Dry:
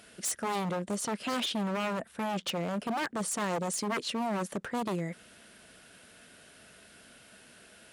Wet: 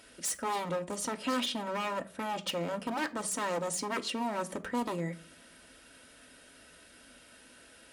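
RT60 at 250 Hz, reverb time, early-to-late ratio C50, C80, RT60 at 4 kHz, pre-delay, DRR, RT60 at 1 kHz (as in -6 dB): 0.65 s, 0.45 s, 19.5 dB, 24.5 dB, 0.25 s, 3 ms, 6.0 dB, 0.40 s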